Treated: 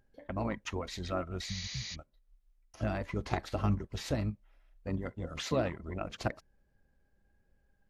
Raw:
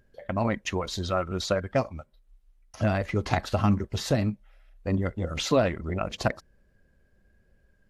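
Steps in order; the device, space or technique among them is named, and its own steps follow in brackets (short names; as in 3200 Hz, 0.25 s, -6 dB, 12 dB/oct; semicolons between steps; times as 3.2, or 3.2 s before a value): 1.52–1.92 spectral repair 230–6800 Hz before; 4.89–5.98 HPF 95 Hz 6 dB/oct; octave pedal (harmoniser -12 st -6 dB); gain -9 dB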